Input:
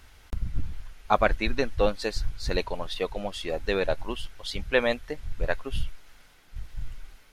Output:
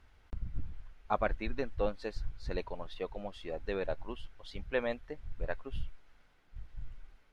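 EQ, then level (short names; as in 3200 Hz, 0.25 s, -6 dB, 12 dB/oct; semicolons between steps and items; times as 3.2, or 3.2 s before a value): LPF 1800 Hz 6 dB/oct; -8.5 dB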